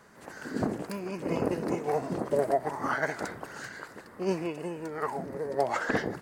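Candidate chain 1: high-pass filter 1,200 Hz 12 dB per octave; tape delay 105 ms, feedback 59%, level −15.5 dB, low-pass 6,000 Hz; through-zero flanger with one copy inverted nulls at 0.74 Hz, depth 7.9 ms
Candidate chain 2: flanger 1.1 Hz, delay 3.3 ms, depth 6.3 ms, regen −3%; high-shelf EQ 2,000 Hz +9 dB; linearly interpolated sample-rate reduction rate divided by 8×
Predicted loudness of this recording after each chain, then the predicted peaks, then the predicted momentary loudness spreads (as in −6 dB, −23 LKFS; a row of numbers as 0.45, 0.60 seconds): −42.5, −34.5 LKFS; −21.5, −15.5 dBFS; 14, 12 LU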